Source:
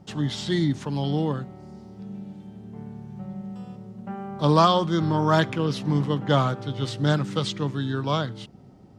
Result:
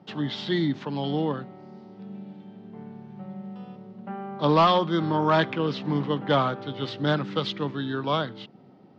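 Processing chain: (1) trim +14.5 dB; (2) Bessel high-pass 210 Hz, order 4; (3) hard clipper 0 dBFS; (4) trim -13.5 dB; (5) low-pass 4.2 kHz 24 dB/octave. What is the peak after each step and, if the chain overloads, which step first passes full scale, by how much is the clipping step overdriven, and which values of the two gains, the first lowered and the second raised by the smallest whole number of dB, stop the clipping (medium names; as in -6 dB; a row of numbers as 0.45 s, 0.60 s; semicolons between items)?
+9.0 dBFS, +8.5 dBFS, 0.0 dBFS, -13.5 dBFS, -12.0 dBFS; step 1, 8.5 dB; step 1 +5.5 dB, step 4 -4.5 dB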